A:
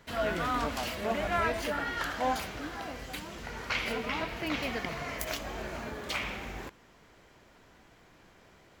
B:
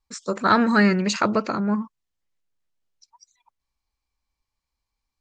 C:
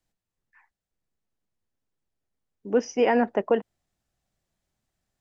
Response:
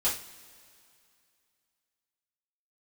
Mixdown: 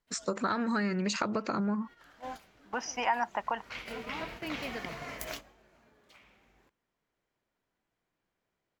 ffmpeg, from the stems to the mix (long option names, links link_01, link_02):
-filter_complex "[0:a]volume=-3.5dB,afade=type=in:start_time=1.73:duration=0.4:silence=0.446684,afade=type=in:start_time=3.65:duration=0.57:silence=0.398107,afade=type=out:start_time=5.29:duration=0.27:silence=0.281838[link_01];[1:a]acompressor=threshold=-23dB:ratio=6,volume=1.5dB,asplit=2[link_02][link_03];[2:a]lowshelf=frequency=640:width_type=q:width=3:gain=-12.5,volume=2dB[link_04];[link_03]apad=whole_len=392493[link_05];[link_01][link_05]sidechaincompress=threshold=-38dB:ratio=8:attack=16:release=258[link_06];[link_06][link_02][link_04]amix=inputs=3:normalize=0,agate=range=-11dB:threshold=-41dB:ratio=16:detection=peak,equalizer=frequency=70:width_type=o:width=0.31:gain=-14.5,acompressor=threshold=-32dB:ratio=2"